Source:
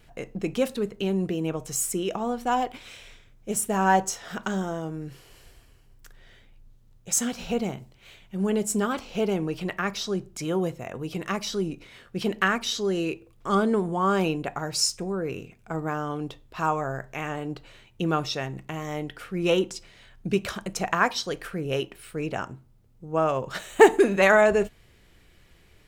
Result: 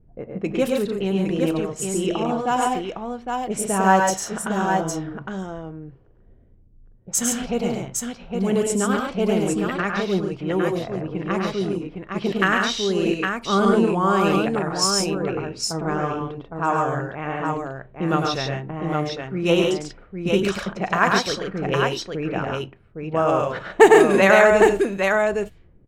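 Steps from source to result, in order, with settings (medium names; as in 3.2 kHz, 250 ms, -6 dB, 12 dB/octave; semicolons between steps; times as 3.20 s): level-controlled noise filter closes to 320 Hz, open at -21.5 dBFS; multi-tap echo 96/105/140/810 ms -11.5/-4.5/-4.5/-4.5 dB; trim +2.5 dB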